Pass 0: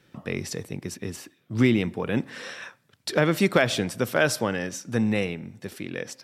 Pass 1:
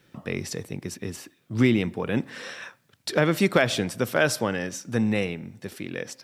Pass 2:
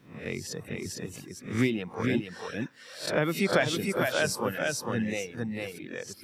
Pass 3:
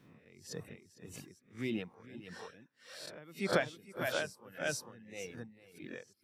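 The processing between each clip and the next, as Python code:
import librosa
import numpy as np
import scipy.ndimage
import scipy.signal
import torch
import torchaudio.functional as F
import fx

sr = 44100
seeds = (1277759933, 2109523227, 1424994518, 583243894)

y1 = fx.quant_dither(x, sr, seeds[0], bits=12, dither='none')
y2 = fx.spec_swells(y1, sr, rise_s=0.44)
y2 = y2 + 10.0 ** (-3.0 / 20.0) * np.pad(y2, (int(453 * sr / 1000.0), 0))[:len(y2)]
y2 = fx.dereverb_blind(y2, sr, rt60_s=1.1)
y2 = F.gain(torch.from_numpy(y2), -5.5).numpy()
y3 = y2 * 10.0 ** (-23 * (0.5 - 0.5 * np.cos(2.0 * np.pi * 1.7 * np.arange(len(y2)) / sr)) / 20.0)
y3 = F.gain(torch.from_numpy(y3), -4.5).numpy()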